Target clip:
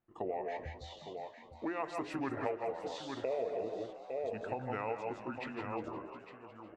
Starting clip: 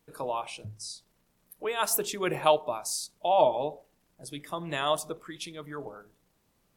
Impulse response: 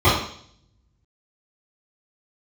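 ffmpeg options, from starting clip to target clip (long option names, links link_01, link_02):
-filter_complex "[0:a]asetrate=33038,aresample=44100,atempo=1.33484,agate=range=-12dB:threshold=-47dB:ratio=16:detection=peak,lowpass=1700,lowshelf=frequency=340:gain=-6,asplit=2[link_01][link_02];[link_02]aecho=0:1:153|169|856:0.335|0.398|0.237[link_03];[link_01][link_03]amix=inputs=2:normalize=0,acompressor=threshold=-36dB:ratio=6,asplit=2[link_04][link_05];[link_05]asplit=6[link_06][link_07][link_08][link_09][link_10][link_11];[link_06]adelay=357,afreqshift=77,volume=-14.5dB[link_12];[link_07]adelay=714,afreqshift=154,volume=-18.8dB[link_13];[link_08]adelay=1071,afreqshift=231,volume=-23.1dB[link_14];[link_09]adelay=1428,afreqshift=308,volume=-27.4dB[link_15];[link_10]adelay=1785,afreqshift=385,volume=-31.7dB[link_16];[link_11]adelay=2142,afreqshift=462,volume=-36dB[link_17];[link_12][link_13][link_14][link_15][link_16][link_17]amix=inputs=6:normalize=0[link_18];[link_04][link_18]amix=inputs=2:normalize=0,volume=2dB"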